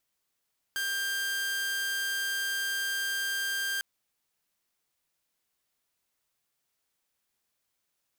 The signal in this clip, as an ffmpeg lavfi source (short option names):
-f lavfi -i "aevalsrc='0.0473*(2*mod(1590*t,1)-1)':d=3.05:s=44100"